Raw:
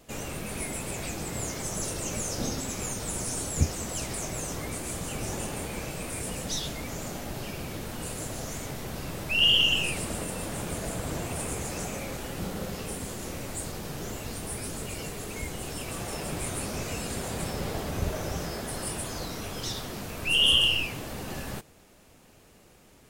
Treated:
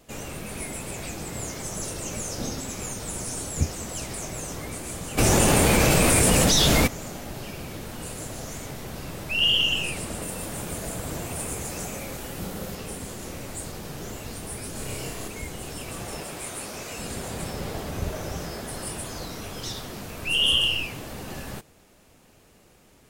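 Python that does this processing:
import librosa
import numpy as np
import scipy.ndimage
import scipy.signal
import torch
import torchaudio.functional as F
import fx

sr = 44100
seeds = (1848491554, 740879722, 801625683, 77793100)

y = fx.env_flatten(x, sr, amount_pct=100, at=(5.17, 6.86), fade=0.02)
y = fx.high_shelf(y, sr, hz=9600.0, db=7.0, at=(10.22, 12.75))
y = fx.room_flutter(y, sr, wall_m=5.3, rt60_s=0.58, at=(14.72, 15.28))
y = fx.low_shelf(y, sr, hz=220.0, db=-12.0, at=(16.23, 16.99))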